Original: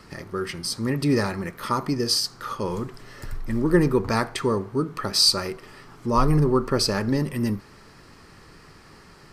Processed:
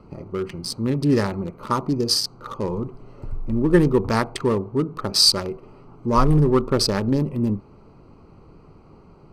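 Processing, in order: local Wiener filter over 25 samples; trim +3 dB

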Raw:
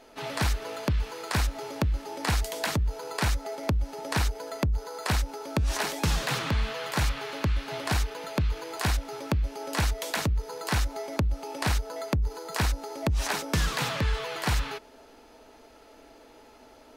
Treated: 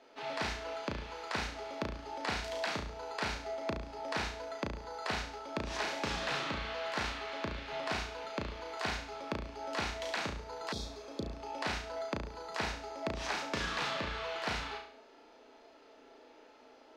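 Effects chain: three-band isolator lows -15 dB, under 220 Hz, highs -23 dB, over 6 kHz; flutter echo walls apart 6 m, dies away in 0.52 s; spectral replace 10.74–11.31 s, 580–3200 Hz after; trim -6.5 dB

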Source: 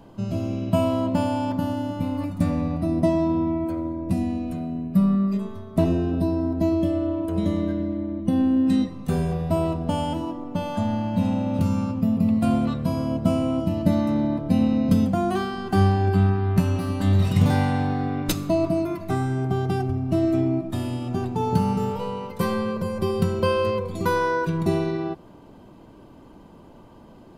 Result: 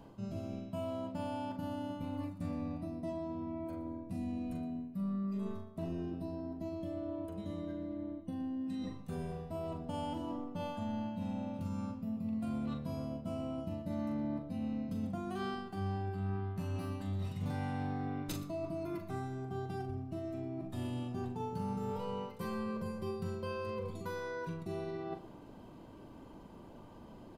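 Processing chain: reverse; compression 6:1, threshold -32 dBFS, peak gain reduction 18 dB; reverse; multi-tap echo 41/119 ms -7/-17 dB; trim -6 dB

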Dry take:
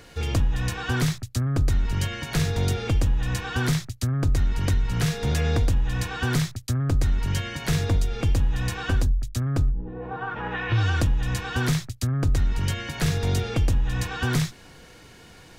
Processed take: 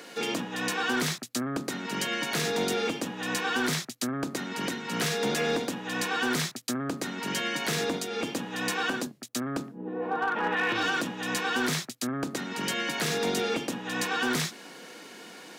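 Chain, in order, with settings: steep high-pass 200 Hz 36 dB/octave; peak limiter -21.5 dBFS, peak gain reduction 8.5 dB; overload inside the chain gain 25 dB; trim +4 dB

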